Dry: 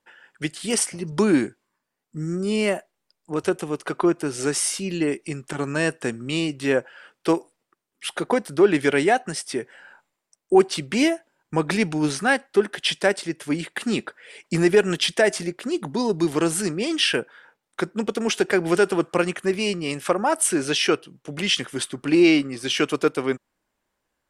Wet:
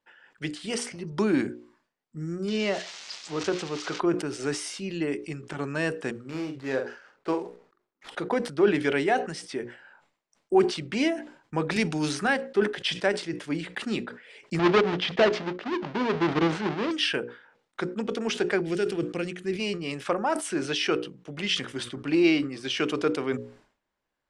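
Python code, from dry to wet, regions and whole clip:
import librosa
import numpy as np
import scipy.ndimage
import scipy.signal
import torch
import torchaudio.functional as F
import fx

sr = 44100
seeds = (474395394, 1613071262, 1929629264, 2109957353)

y = fx.chain(x, sr, fx.crossing_spikes(level_db=-15.5),
    fx.lowpass(hz=6200.0, slope=24), at=(2.48, 4.0))
y = fx.chain(y, sr, fx.median_filter(points=15),
    fx.low_shelf(hz=330.0, db=-6.0),
    fx.doubler(ms=45.0, db=-8), at=(6.11, 8.09))
y = fx.chain(y, sr, fx.high_shelf(hz=6600.0, db=11.5),
    fx.band_squash(depth_pct=100), at=(11.76, 12.28))
y = fx.chain(y, sr, fx.halfwave_hold(),
    fx.highpass(hz=240.0, slope=6),
    fx.air_absorb(metres=200.0), at=(14.59, 16.91))
y = fx.chain(y, sr, fx.peak_eq(hz=1000.0, db=-14.0, octaves=1.2),
    fx.notch(hz=580.0, q=8.9), at=(18.61, 19.6))
y = scipy.signal.sosfilt(scipy.signal.butter(2, 5500.0, 'lowpass', fs=sr, output='sos'), y)
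y = fx.hum_notches(y, sr, base_hz=60, count=9)
y = fx.sustainer(y, sr, db_per_s=120.0)
y = F.gain(torch.from_numpy(y), -5.0).numpy()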